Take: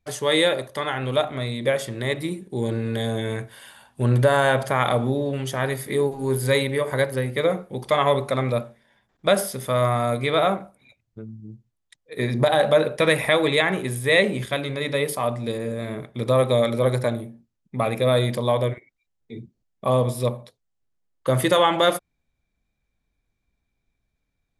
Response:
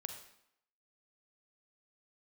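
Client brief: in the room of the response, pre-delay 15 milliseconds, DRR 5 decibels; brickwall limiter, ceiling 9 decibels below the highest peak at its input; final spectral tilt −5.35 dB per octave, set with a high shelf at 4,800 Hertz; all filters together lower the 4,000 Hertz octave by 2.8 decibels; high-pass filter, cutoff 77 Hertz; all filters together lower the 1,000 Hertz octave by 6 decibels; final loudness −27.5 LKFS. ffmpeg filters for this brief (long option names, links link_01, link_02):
-filter_complex "[0:a]highpass=77,equalizer=frequency=1000:width_type=o:gain=-8.5,equalizer=frequency=4000:width_type=o:gain=-4.5,highshelf=frequency=4800:gain=4.5,alimiter=limit=-16.5dB:level=0:latency=1,asplit=2[link_01][link_02];[1:a]atrim=start_sample=2205,adelay=15[link_03];[link_02][link_03]afir=irnorm=-1:irlink=0,volume=-2.5dB[link_04];[link_01][link_04]amix=inputs=2:normalize=0,volume=-1.5dB"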